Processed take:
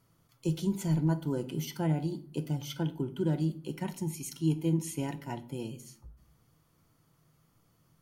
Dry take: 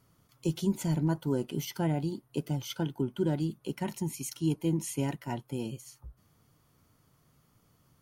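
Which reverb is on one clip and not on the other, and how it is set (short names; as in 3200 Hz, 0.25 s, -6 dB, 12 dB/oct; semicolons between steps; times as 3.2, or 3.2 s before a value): shoebox room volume 550 m³, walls furnished, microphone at 0.71 m; gain -2.5 dB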